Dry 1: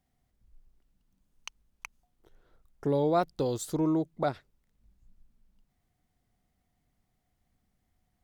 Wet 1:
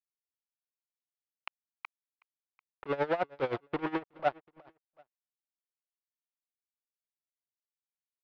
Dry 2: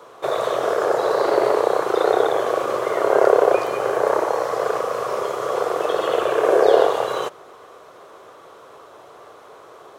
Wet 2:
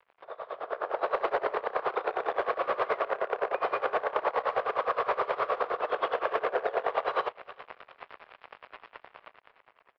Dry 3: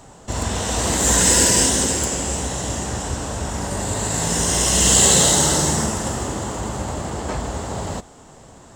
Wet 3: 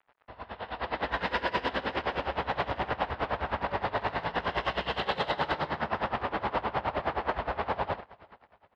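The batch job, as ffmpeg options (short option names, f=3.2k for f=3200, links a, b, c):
-filter_complex "[0:a]aemphasis=mode=reproduction:type=75kf,aresample=11025,aeval=exprs='sgn(val(0))*max(abs(val(0))-0.00891,0)':c=same,aresample=44100,acompressor=threshold=-28dB:ratio=5,alimiter=level_in=0.5dB:limit=-24dB:level=0:latency=1:release=89,volume=-0.5dB,dynaudnorm=f=200:g=9:m=16.5dB,asoftclip=type=hard:threshold=-15.5dB,acrossover=split=550 3400:gain=0.178 1 0.0708[a][b][c];[a][b][c]amix=inputs=3:normalize=0,aecho=1:1:371|742:0.0794|0.027,aeval=exprs='val(0)*pow(10,-19*(0.5-0.5*cos(2*PI*9.6*n/s))/20)':c=same"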